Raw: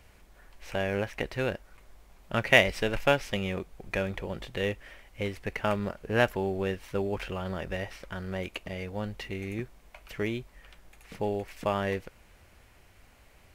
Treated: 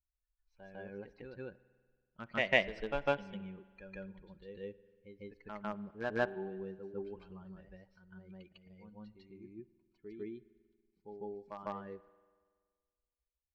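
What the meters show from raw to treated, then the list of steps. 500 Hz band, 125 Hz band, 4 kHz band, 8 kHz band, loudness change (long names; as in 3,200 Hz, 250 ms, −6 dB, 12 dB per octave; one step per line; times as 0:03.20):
−10.0 dB, −16.0 dB, −11.5 dB, below −20 dB, −8.5 dB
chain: spectral dynamics exaggerated over time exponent 2
parametric band 97 Hz −11.5 dB 0.73 octaves
in parallel at −9 dB: bit reduction 4 bits
on the sum: high-frequency loss of the air 200 metres
on a send: backwards echo 151 ms −5.5 dB
on the sum: spring reverb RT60 1.7 s, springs 47 ms, chirp 25 ms, DRR 18.5 dB
level −7.5 dB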